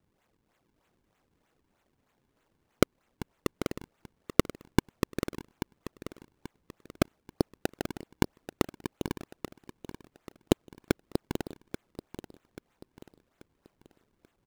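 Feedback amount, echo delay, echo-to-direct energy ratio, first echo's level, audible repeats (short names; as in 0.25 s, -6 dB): 40%, 0.835 s, -11.5 dB, -12.0 dB, 3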